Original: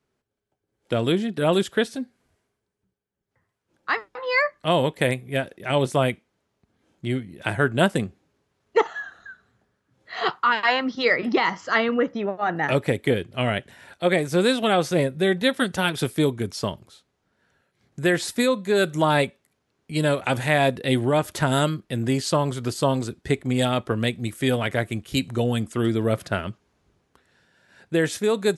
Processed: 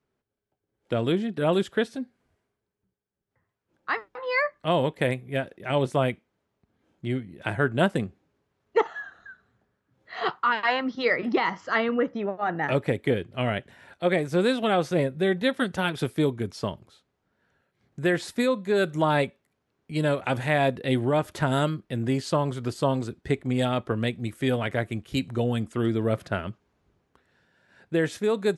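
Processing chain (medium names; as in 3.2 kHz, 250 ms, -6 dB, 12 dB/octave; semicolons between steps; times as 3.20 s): treble shelf 4.2 kHz -9 dB; trim -2.5 dB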